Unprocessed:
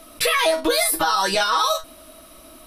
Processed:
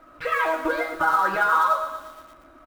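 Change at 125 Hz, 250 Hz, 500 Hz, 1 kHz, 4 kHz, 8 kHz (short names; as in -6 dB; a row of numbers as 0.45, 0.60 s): n/a, -4.0 dB, -5.5 dB, +0.5 dB, -19.0 dB, under -20 dB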